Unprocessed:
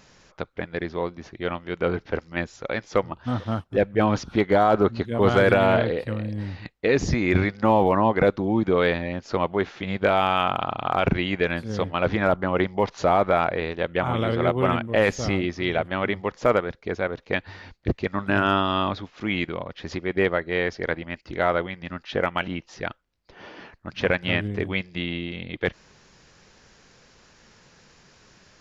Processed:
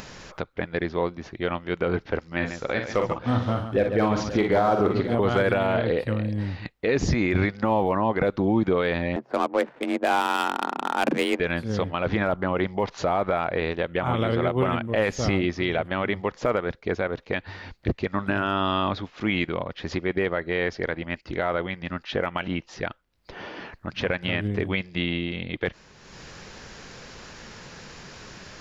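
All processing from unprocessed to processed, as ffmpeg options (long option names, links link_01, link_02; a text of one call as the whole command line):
ffmpeg -i in.wav -filter_complex "[0:a]asettb=1/sr,asplit=3[link_01][link_02][link_03];[link_01]atrim=end=2.274[link_04];[link_02]atrim=start=2.27:end=5.15,asetpts=PTS-STARTPTS,afade=type=in:duration=0.004:curve=qsin,afade=type=out:start_time=2.876:duration=0.004:curve=qsin,asoftclip=type=hard:threshold=-9.5dB,aecho=1:1:43|59|141|526|583:0.422|0.282|0.251|0.126|0.1,atrim=end_sample=127008[link_05];[link_03]atrim=start=5.146[link_06];[link_04][link_05]acrossfade=duration=0.004:curve1=hsin:curve2=qsin[link_07];[link_07][link_06]acrossfade=duration=0.004:curve1=qsin:curve2=hsin,asettb=1/sr,asplit=3[link_08][link_09][link_10];[link_08]atrim=end=9.164[link_11];[link_09]atrim=start=9.16:end=11.4,asetpts=PTS-STARTPTS,afade=type=in:duration=0.004:curve=qsin,afade=type=out:start_time=2.236:duration=0.004:curve=qsin,afreqshift=130,adynamicsmooth=sensitivity=2.5:basefreq=720[link_12];[link_10]atrim=start=11.396[link_13];[link_11][link_12]acrossfade=duration=0.004:curve1=hsin:curve2=qsin[link_14];[link_14][link_13]acrossfade=duration=0.004:curve1=qsin:curve2=hsin,equalizer=frequency=6300:width_type=o:width=0.77:gain=-2.5,acompressor=mode=upward:threshold=-35dB:ratio=2.5,alimiter=limit=-14.5dB:level=0:latency=1:release=94,volume=2.5dB" out.wav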